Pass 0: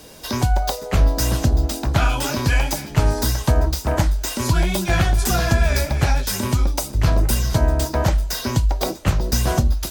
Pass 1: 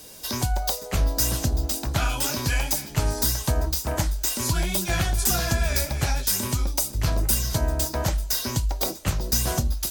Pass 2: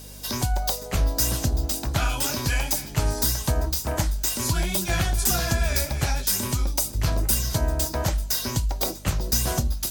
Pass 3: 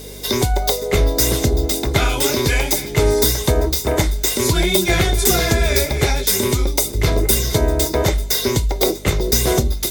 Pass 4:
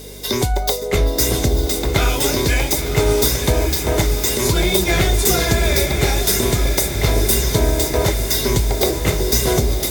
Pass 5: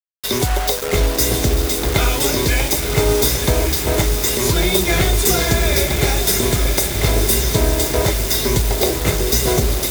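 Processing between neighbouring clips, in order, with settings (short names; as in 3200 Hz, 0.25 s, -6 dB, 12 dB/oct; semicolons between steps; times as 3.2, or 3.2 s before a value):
high shelf 4400 Hz +11.5 dB; gain -7 dB
hum 50 Hz, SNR 20 dB
small resonant body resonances 410/2100/3600 Hz, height 16 dB, ringing for 35 ms; gain +5.5 dB
diffused feedback echo 1.024 s, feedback 59%, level -7.5 dB; gain -1 dB
bit-crush 4-bit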